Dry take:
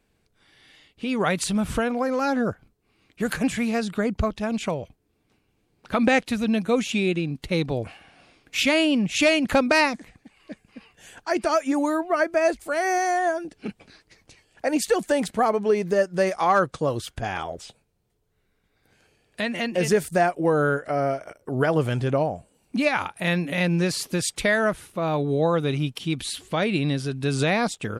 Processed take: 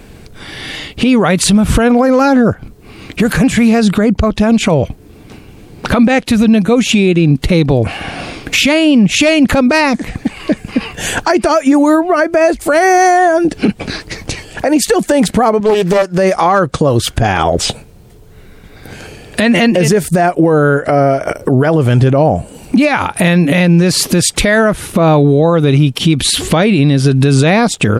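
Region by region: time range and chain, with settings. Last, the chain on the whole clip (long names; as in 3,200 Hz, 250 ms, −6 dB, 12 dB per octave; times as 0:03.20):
0:15.60–0:16.18: low-shelf EQ 360 Hz −9.5 dB + highs frequency-modulated by the lows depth 0.43 ms
whole clip: low-shelf EQ 500 Hz +5.5 dB; downward compressor 10 to 1, threshold −33 dBFS; boost into a limiter +29.5 dB; level −1 dB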